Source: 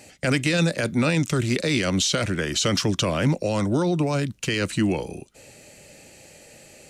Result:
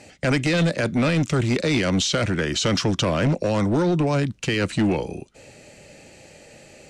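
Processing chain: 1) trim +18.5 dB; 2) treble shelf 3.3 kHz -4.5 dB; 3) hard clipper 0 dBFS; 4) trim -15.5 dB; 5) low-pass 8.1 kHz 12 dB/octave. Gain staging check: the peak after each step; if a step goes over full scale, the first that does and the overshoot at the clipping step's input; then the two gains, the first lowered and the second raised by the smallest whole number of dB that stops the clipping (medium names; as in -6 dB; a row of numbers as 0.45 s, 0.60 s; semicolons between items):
+9.5 dBFS, +8.5 dBFS, 0.0 dBFS, -15.5 dBFS, -15.0 dBFS; step 1, 8.5 dB; step 1 +9.5 dB, step 4 -6.5 dB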